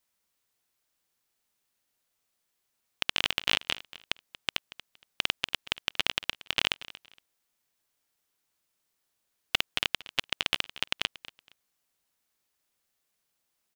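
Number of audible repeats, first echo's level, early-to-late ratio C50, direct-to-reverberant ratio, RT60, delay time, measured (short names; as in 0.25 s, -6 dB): 2, -17.5 dB, none, none, none, 0.233 s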